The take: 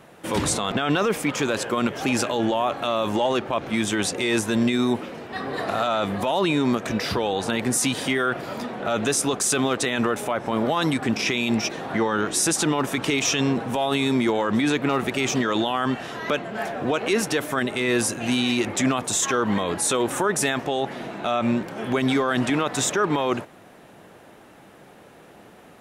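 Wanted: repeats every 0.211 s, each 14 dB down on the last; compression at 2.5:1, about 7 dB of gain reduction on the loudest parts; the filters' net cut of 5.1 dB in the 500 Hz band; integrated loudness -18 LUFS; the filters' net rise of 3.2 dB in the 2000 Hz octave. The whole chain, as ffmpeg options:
-af "equalizer=f=500:t=o:g=-7,equalizer=f=2k:t=o:g=4.5,acompressor=threshold=-29dB:ratio=2.5,aecho=1:1:211|422:0.2|0.0399,volume=11.5dB"

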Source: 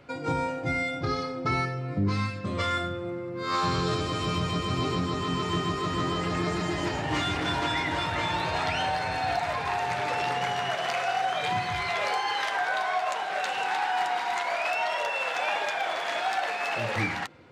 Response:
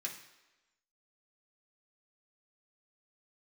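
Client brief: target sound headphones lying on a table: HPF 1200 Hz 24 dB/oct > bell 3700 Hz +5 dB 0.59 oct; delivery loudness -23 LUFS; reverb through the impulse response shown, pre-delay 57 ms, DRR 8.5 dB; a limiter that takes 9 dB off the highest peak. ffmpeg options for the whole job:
-filter_complex "[0:a]alimiter=level_in=1.5dB:limit=-24dB:level=0:latency=1,volume=-1.5dB,asplit=2[a][b];[1:a]atrim=start_sample=2205,adelay=57[c];[b][c]afir=irnorm=-1:irlink=0,volume=-8dB[d];[a][d]amix=inputs=2:normalize=0,highpass=f=1.2k:w=0.5412,highpass=f=1.2k:w=1.3066,equalizer=f=3.7k:t=o:w=0.59:g=5,volume=12dB"

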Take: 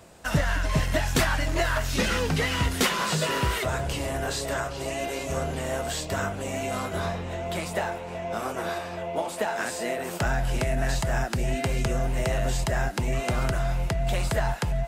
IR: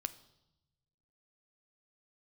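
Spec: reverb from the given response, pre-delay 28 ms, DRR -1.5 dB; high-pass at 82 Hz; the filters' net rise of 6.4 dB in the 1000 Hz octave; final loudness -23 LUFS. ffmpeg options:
-filter_complex "[0:a]highpass=82,equalizer=f=1k:t=o:g=8.5,asplit=2[a][b];[1:a]atrim=start_sample=2205,adelay=28[c];[b][c]afir=irnorm=-1:irlink=0,volume=2.5dB[d];[a][d]amix=inputs=2:normalize=0,volume=-1dB"

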